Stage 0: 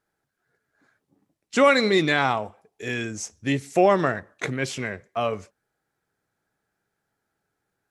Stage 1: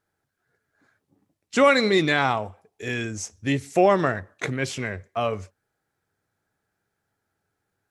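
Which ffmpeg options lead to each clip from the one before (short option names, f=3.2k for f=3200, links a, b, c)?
-af "equalizer=f=92:w=3.6:g=9"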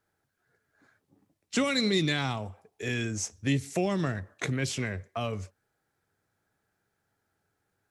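-filter_complex "[0:a]acrossover=split=260|3000[a][b][c];[b]acompressor=threshold=-34dB:ratio=4[d];[a][d][c]amix=inputs=3:normalize=0"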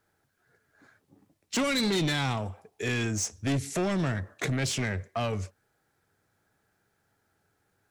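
-af "asoftclip=type=tanh:threshold=-28dB,volume=5dB"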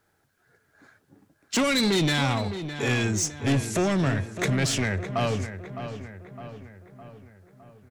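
-filter_complex "[0:a]asplit=2[a][b];[b]adelay=610,lowpass=f=2.8k:p=1,volume=-10dB,asplit=2[c][d];[d]adelay=610,lowpass=f=2.8k:p=1,volume=0.55,asplit=2[e][f];[f]adelay=610,lowpass=f=2.8k:p=1,volume=0.55,asplit=2[g][h];[h]adelay=610,lowpass=f=2.8k:p=1,volume=0.55,asplit=2[i][j];[j]adelay=610,lowpass=f=2.8k:p=1,volume=0.55,asplit=2[k][l];[l]adelay=610,lowpass=f=2.8k:p=1,volume=0.55[m];[a][c][e][g][i][k][m]amix=inputs=7:normalize=0,volume=4dB"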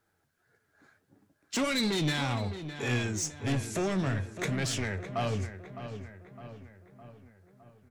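-af "flanger=delay=8:depth=5.7:regen=68:speed=1.7:shape=triangular,volume=-2dB"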